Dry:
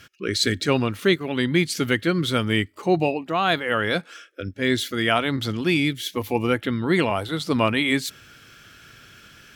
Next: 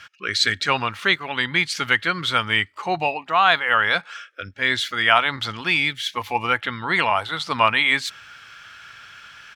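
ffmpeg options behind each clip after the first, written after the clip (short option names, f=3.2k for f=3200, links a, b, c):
-af "firequalizer=gain_entry='entry(110,0);entry(310,-5);entry(870,15);entry(13000,-3)':delay=0.05:min_phase=1,volume=-7dB"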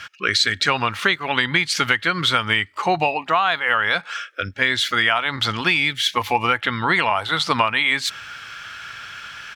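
-af "acompressor=threshold=-22dB:ratio=10,volume=7.5dB"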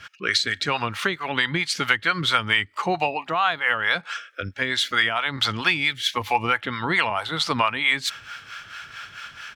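-filter_complex "[0:a]acrossover=split=540[a][b];[a]aeval=exprs='val(0)*(1-0.7/2+0.7/2*cos(2*PI*4.5*n/s))':c=same[c];[b]aeval=exprs='val(0)*(1-0.7/2-0.7/2*cos(2*PI*4.5*n/s))':c=same[d];[c][d]amix=inputs=2:normalize=0"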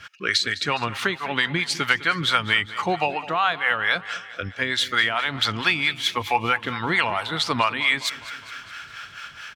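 -af "aecho=1:1:206|412|618|824|1030:0.15|0.0853|0.0486|0.0277|0.0158"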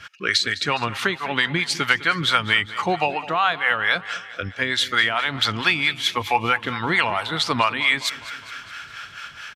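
-af "aresample=32000,aresample=44100,volume=1.5dB"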